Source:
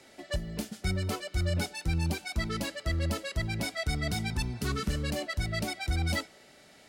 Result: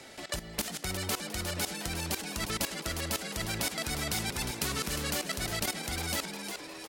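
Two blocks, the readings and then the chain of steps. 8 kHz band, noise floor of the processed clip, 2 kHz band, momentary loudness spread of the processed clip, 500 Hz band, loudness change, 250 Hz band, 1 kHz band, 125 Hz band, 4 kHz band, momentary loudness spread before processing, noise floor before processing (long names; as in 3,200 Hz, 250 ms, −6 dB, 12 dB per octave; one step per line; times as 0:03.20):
+8.0 dB, −48 dBFS, 0.0 dB, 4 LU, −1.5 dB, −0.5 dB, −3.5 dB, +1.0 dB, −8.0 dB, +3.5 dB, 4 LU, −57 dBFS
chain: output level in coarse steps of 17 dB
echo with shifted repeats 356 ms, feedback 37%, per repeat +120 Hz, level −13 dB
every bin compressed towards the loudest bin 2 to 1
level +8 dB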